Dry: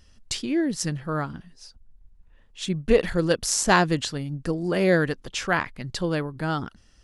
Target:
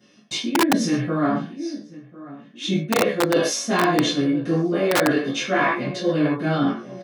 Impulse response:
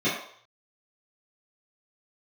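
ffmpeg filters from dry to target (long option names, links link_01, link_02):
-filter_complex "[0:a]asplit=2[link_01][link_02];[link_02]adelay=1045,lowpass=frequency=1500:poles=1,volume=-21dB,asplit=2[link_03][link_04];[link_04]adelay=1045,lowpass=frequency=1500:poles=1,volume=0.42,asplit=2[link_05][link_06];[link_06]adelay=1045,lowpass=frequency=1500:poles=1,volume=0.42[link_07];[link_01][link_03][link_05][link_07]amix=inputs=4:normalize=0,aeval=exprs='0.596*(cos(1*acos(clip(val(0)/0.596,-1,1)))-cos(1*PI/2))+0.0168*(cos(7*acos(clip(val(0)/0.596,-1,1)))-cos(7*PI/2))':channel_layout=same,asplit=2[link_08][link_09];[link_09]adelay=14,volume=-3.5dB[link_10];[link_08][link_10]amix=inputs=2:normalize=0[link_11];[1:a]atrim=start_sample=2205,afade=type=out:start_time=0.2:duration=0.01,atrim=end_sample=9261[link_12];[link_11][link_12]afir=irnorm=-1:irlink=0,flanger=delay=19.5:depth=4.8:speed=0.33,acrossover=split=690|1700[link_13][link_14][link_15];[link_13]aeval=exprs='(mod(1.12*val(0)+1,2)-1)/1.12':channel_layout=same[link_16];[link_16][link_14][link_15]amix=inputs=3:normalize=0,highpass=190,areverse,acompressor=threshold=-17dB:ratio=6,areverse"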